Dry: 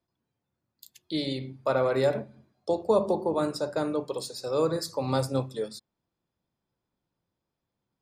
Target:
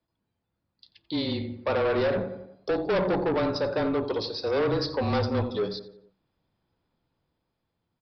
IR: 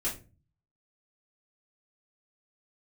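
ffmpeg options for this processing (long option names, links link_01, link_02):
-filter_complex "[0:a]asplit=2[link_01][link_02];[link_02]adelay=88,lowpass=frequency=2400:poles=1,volume=-13.5dB,asplit=2[link_03][link_04];[link_04]adelay=88,lowpass=frequency=2400:poles=1,volume=0.52,asplit=2[link_05][link_06];[link_06]adelay=88,lowpass=frequency=2400:poles=1,volume=0.52,asplit=2[link_07][link_08];[link_08]adelay=88,lowpass=frequency=2400:poles=1,volume=0.52,asplit=2[link_09][link_10];[link_10]adelay=88,lowpass=frequency=2400:poles=1,volume=0.52[link_11];[link_01][link_03][link_05][link_07][link_09][link_11]amix=inputs=6:normalize=0,dynaudnorm=framelen=460:gausssize=7:maxgain=6dB,aresample=11025,asoftclip=type=tanh:threshold=-23dB,aresample=44100,afreqshift=-25,volume=1.5dB"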